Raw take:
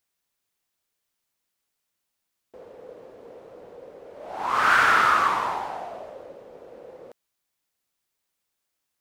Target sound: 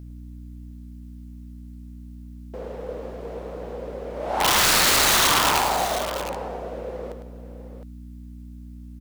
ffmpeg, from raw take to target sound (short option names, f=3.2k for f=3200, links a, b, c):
-af "alimiter=limit=-15dB:level=0:latency=1:release=476,acontrast=57,aeval=exprs='(mod(7.08*val(0)+1,2)-1)/7.08':c=same,aeval=exprs='val(0)+0.00891*(sin(2*PI*60*n/s)+sin(2*PI*2*60*n/s)/2+sin(2*PI*3*60*n/s)/3+sin(2*PI*4*60*n/s)/4+sin(2*PI*5*60*n/s)/5)':c=same,aecho=1:1:104|712:0.398|0.266,volume=3dB"